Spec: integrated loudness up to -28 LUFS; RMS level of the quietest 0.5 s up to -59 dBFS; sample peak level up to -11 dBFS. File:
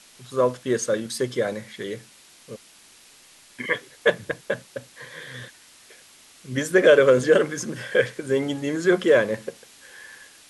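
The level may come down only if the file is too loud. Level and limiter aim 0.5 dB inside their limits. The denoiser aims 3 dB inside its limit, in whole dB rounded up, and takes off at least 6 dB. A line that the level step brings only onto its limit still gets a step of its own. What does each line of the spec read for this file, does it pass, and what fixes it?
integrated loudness -22.5 LUFS: fail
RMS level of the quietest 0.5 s -52 dBFS: fail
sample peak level -4.5 dBFS: fail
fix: denoiser 6 dB, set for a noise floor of -52 dBFS; gain -6 dB; limiter -11.5 dBFS

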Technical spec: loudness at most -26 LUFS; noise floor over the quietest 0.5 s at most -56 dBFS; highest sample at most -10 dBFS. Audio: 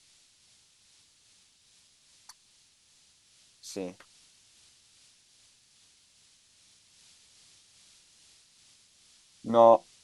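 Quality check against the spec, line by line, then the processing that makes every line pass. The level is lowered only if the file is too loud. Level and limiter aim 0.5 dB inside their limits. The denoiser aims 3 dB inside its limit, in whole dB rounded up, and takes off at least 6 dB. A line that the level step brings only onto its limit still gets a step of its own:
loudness -24.5 LUFS: fail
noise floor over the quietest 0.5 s -64 dBFS: OK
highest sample -6.5 dBFS: fail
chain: gain -2 dB; limiter -10.5 dBFS

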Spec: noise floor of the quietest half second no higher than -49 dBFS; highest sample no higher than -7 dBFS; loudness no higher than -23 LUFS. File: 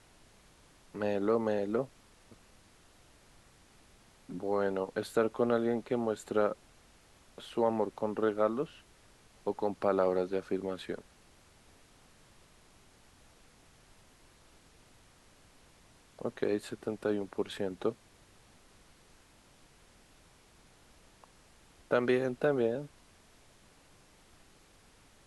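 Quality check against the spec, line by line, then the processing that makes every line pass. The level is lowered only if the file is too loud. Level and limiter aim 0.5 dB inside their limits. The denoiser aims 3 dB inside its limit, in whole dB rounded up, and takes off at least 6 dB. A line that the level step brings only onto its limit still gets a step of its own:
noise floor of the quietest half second -61 dBFS: OK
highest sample -14.5 dBFS: OK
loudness -33.0 LUFS: OK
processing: none

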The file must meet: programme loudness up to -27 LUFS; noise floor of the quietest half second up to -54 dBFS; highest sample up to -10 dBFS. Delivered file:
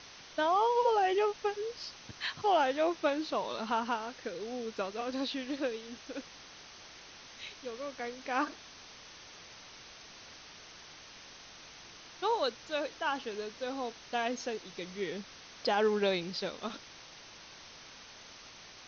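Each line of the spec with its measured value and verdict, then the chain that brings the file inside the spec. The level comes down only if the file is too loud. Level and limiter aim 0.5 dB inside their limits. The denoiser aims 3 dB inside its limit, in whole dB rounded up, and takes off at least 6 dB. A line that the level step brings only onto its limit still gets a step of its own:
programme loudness -33.5 LUFS: OK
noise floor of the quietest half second -52 dBFS: fail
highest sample -17.0 dBFS: OK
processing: denoiser 6 dB, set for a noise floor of -52 dBFS

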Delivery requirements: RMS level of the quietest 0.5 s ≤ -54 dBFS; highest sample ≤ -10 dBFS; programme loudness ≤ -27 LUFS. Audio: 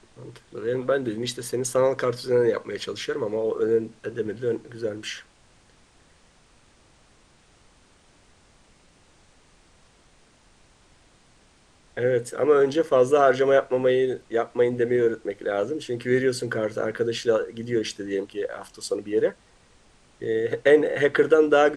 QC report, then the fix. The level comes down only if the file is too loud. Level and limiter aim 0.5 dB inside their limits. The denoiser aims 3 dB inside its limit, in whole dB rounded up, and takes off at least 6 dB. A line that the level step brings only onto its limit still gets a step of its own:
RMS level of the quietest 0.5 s -58 dBFS: OK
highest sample -5.5 dBFS: fail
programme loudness -24.0 LUFS: fail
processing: gain -3.5 dB; limiter -10.5 dBFS

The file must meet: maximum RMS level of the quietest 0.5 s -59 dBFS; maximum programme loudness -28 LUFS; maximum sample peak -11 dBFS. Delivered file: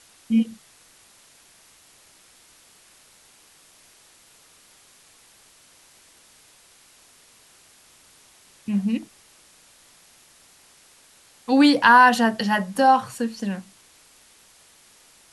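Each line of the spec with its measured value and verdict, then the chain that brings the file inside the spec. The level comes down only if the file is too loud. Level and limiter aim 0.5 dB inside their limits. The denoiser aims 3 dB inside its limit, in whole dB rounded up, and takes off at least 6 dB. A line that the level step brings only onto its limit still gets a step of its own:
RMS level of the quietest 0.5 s -54 dBFS: fail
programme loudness -19.5 LUFS: fail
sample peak -3.0 dBFS: fail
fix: gain -9 dB

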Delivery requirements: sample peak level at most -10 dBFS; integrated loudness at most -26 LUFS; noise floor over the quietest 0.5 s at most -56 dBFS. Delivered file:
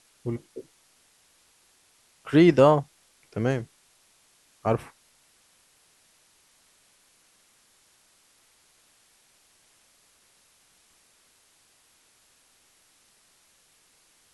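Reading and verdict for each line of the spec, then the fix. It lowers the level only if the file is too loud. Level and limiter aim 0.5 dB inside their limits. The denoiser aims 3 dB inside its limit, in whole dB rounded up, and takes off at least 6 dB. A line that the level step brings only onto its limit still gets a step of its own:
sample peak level -6.0 dBFS: fail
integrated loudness -23.5 LUFS: fail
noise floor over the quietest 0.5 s -63 dBFS: OK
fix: gain -3 dB; limiter -10.5 dBFS

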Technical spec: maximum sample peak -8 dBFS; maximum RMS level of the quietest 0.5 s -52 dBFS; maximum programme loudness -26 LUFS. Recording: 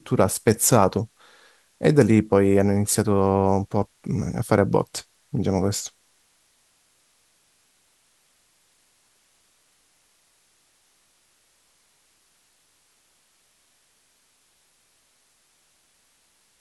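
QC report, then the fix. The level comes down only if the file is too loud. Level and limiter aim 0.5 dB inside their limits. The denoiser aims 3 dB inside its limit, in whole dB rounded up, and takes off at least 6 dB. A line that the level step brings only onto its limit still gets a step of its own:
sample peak -2.5 dBFS: fail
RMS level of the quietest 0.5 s -64 dBFS: OK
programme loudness -21.5 LUFS: fail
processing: gain -5 dB; limiter -8.5 dBFS

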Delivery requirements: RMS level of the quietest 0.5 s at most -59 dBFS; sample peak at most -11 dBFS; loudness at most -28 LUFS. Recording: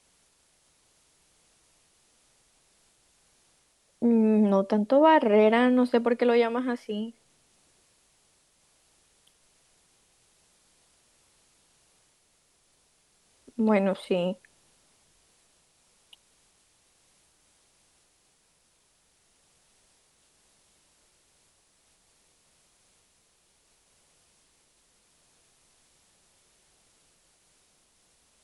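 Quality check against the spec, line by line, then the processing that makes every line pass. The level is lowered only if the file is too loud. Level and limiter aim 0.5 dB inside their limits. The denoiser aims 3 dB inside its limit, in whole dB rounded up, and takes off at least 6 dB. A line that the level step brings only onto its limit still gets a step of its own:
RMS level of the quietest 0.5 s -67 dBFS: OK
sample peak -8.0 dBFS: fail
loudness -23.5 LUFS: fail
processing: gain -5 dB

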